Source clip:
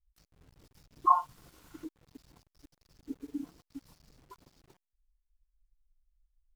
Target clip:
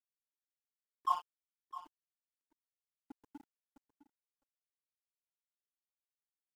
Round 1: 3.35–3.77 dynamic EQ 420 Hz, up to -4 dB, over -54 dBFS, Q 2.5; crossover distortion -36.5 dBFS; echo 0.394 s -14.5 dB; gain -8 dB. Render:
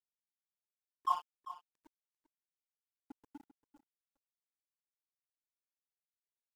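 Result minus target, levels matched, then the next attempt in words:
echo 0.264 s early
3.35–3.77 dynamic EQ 420 Hz, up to -4 dB, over -54 dBFS, Q 2.5; crossover distortion -36.5 dBFS; echo 0.658 s -14.5 dB; gain -8 dB

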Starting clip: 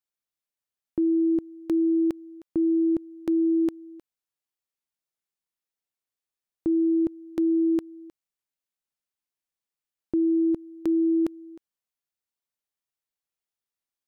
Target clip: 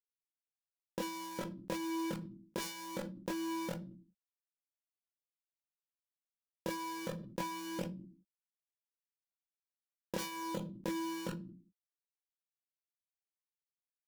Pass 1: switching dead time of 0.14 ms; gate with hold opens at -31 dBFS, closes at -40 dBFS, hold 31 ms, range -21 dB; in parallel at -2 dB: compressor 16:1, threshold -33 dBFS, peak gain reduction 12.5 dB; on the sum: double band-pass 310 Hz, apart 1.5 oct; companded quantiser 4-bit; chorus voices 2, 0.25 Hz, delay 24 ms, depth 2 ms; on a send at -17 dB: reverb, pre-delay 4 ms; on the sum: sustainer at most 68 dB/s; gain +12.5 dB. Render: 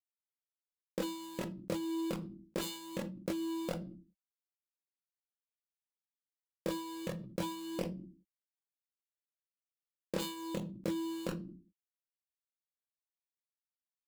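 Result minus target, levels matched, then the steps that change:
compressor: peak gain reduction -10.5 dB; switching dead time: distortion -15 dB
change: switching dead time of 0.44 ms; change: compressor 16:1, threshold -44.5 dBFS, peak gain reduction 23.5 dB

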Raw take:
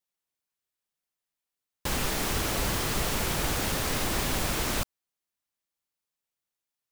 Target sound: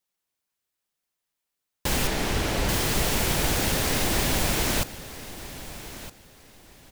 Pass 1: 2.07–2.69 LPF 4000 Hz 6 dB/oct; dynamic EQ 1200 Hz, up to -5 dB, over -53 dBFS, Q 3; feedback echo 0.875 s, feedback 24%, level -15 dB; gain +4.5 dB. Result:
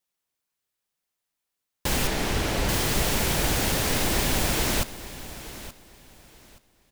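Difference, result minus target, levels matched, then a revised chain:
echo 0.389 s early
2.07–2.69 LPF 4000 Hz 6 dB/oct; dynamic EQ 1200 Hz, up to -5 dB, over -53 dBFS, Q 3; feedback echo 1.264 s, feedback 24%, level -15 dB; gain +4.5 dB

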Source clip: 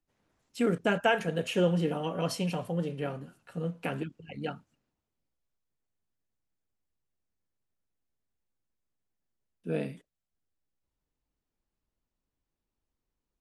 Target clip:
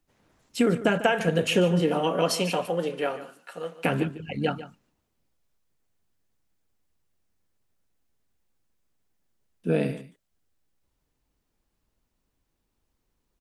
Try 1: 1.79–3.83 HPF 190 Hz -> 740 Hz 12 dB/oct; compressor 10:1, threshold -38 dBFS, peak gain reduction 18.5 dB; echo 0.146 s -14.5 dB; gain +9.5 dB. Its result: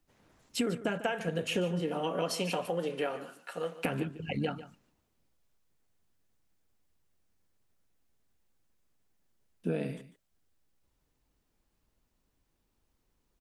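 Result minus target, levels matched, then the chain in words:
compressor: peak gain reduction +10 dB
1.79–3.83 HPF 190 Hz -> 740 Hz 12 dB/oct; compressor 10:1, threshold -27 dBFS, peak gain reduction 8.5 dB; echo 0.146 s -14.5 dB; gain +9.5 dB

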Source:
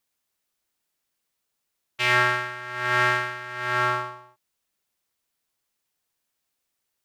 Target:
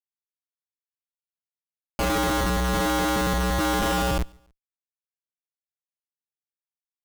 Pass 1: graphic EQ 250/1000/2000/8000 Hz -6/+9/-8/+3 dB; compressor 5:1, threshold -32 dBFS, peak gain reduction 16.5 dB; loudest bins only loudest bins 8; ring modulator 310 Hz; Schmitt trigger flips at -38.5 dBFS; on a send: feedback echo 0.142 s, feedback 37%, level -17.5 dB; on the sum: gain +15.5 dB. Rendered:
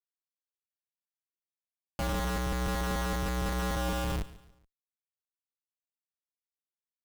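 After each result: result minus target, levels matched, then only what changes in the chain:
compressor: peak gain reduction +8 dB; echo-to-direct +10.5 dB
change: compressor 5:1, threshold -22 dBFS, peak gain reduction 8.5 dB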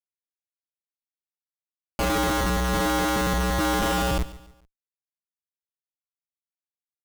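echo-to-direct +10.5 dB
change: feedback echo 0.142 s, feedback 37%, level -28 dB

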